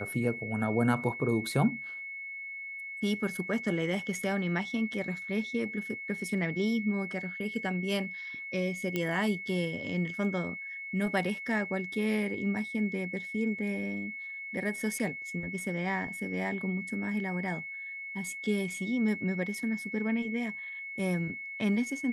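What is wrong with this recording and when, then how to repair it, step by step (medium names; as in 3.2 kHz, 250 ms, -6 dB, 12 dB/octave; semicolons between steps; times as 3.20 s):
whine 2.2 kHz -38 dBFS
8.96 s: pop -17 dBFS
14.99–15.00 s: dropout 6.6 ms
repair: de-click; band-stop 2.2 kHz, Q 30; interpolate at 14.99 s, 6.6 ms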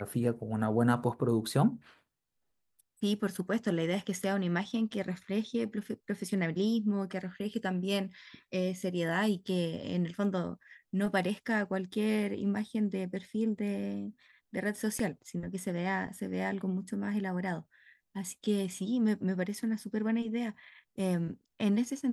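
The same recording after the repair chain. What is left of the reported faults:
nothing left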